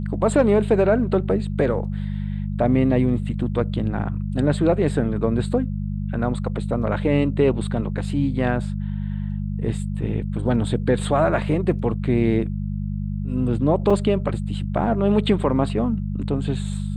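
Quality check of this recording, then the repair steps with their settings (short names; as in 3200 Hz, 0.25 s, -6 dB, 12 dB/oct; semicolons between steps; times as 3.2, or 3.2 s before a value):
hum 50 Hz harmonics 4 -26 dBFS
13.9 gap 5 ms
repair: de-hum 50 Hz, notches 4; interpolate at 13.9, 5 ms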